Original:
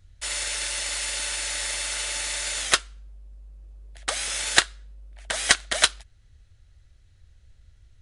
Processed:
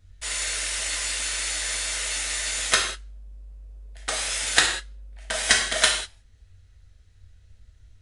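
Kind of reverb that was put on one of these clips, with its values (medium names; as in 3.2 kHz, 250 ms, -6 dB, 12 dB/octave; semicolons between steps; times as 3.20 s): gated-style reverb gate 220 ms falling, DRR -1.5 dB; trim -2.5 dB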